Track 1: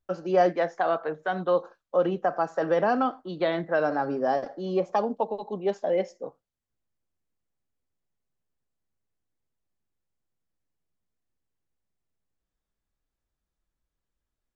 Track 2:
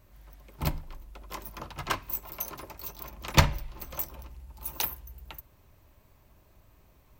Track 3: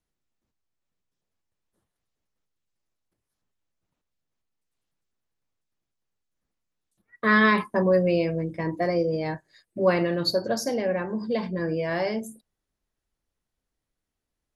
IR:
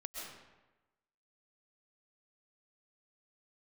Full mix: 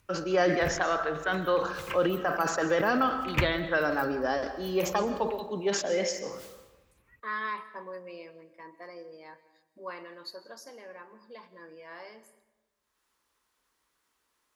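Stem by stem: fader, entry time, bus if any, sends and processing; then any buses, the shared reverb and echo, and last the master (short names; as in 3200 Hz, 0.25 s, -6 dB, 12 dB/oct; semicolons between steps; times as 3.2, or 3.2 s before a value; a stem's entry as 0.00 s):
+3.0 dB, 0.00 s, send -4.5 dB, low shelf 390 Hz -11 dB; sustainer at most 91 dB/s
-7.0 dB, 0.00 s, no send, resonant high shelf 3300 Hz -8 dB, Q 3
-17.5 dB, 0.00 s, send -11.5 dB, HPF 430 Hz 12 dB/oct; bell 1000 Hz +11.5 dB 0.91 oct; upward compressor, threshold -36 dBFS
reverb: on, RT60 1.1 s, pre-delay 90 ms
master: HPF 42 Hz; bell 720 Hz -10 dB 0.93 oct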